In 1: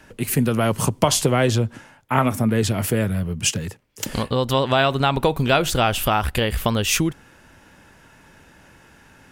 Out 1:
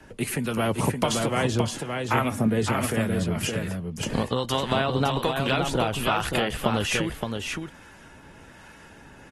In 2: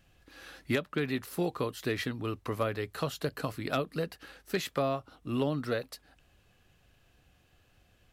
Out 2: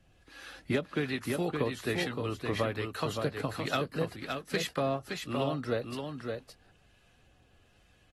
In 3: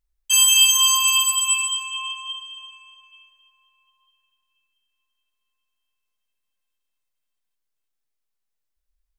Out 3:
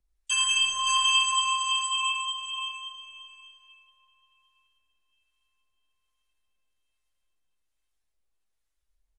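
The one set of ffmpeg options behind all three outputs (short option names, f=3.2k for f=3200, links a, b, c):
-filter_complex "[0:a]acrossover=split=130|2400[a][b][c];[a]acompressor=threshold=-39dB:ratio=4[d];[b]acompressor=threshold=-22dB:ratio=4[e];[c]acompressor=threshold=-33dB:ratio=4[f];[d][e][f]amix=inputs=3:normalize=0,acrossover=split=860[g][h];[g]aeval=exprs='val(0)*(1-0.5/2+0.5/2*cos(2*PI*1.2*n/s))':c=same[i];[h]aeval=exprs='val(0)*(1-0.5/2-0.5/2*cos(2*PI*1.2*n/s))':c=same[j];[i][j]amix=inputs=2:normalize=0,asplit=2[k][l];[l]aecho=0:1:568:0.562[m];[k][m]amix=inputs=2:normalize=0,volume=1.5dB" -ar 48000 -c:a aac -b:a 32k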